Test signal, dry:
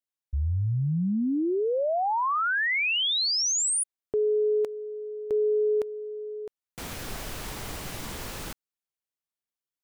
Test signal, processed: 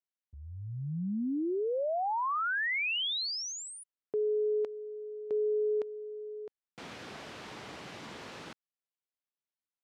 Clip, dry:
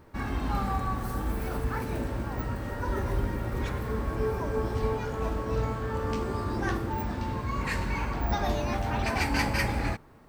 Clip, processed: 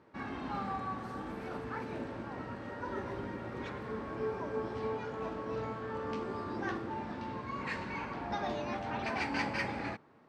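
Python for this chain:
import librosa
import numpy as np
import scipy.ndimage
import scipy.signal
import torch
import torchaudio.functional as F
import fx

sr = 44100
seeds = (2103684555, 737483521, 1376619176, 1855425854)

y = fx.bandpass_edges(x, sr, low_hz=170.0, high_hz=4300.0)
y = F.gain(torch.from_numpy(y), -5.5).numpy()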